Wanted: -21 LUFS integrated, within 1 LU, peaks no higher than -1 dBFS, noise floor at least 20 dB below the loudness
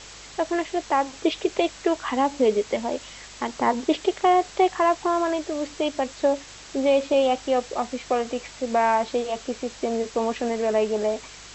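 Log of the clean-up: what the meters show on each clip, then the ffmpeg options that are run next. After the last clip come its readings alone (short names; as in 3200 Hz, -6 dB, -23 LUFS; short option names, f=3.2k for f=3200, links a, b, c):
hum 50 Hz; harmonics up to 150 Hz; hum level -52 dBFS; noise floor -44 dBFS; noise floor target -45 dBFS; loudness -24.5 LUFS; peak -8.0 dBFS; loudness target -21.0 LUFS
-> -af "bandreject=f=50:t=h:w=4,bandreject=f=100:t=h:w=4,bandreject=f=150:t=h:w=4"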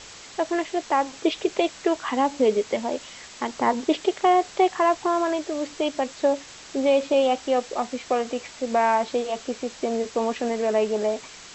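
hum none; noise floor -44 dBFS; noise floor target -45 dBFS
-> -af "afftdn=nr=6:nf=-44"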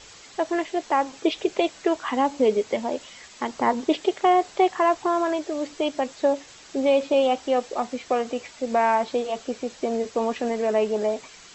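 noise floor -47 dBFS; loudness -24.5 LUFS; peak -8.5 dBFS; loudness target -21.0 LUFS
-> -af "volume=3.5dB"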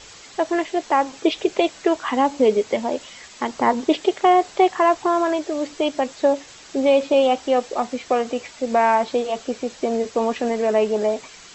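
loudness -21.0 LUFS; peak -5.0 dBFS; noise floor -44 dBFS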